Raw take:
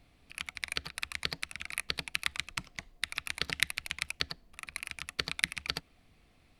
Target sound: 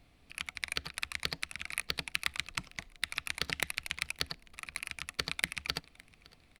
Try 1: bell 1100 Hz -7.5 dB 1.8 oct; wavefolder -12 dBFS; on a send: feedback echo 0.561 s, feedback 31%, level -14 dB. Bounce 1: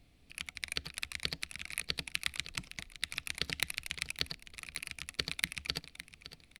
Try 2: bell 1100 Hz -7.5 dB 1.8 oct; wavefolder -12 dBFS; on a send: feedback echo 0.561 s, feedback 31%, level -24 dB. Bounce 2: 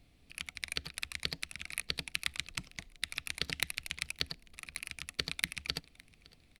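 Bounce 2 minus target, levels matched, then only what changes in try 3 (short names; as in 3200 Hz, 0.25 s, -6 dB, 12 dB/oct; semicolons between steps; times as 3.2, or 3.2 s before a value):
1000 Hz band -5.0 dB
remove: bell 1100 Hz -7.5 dB 1.8 oct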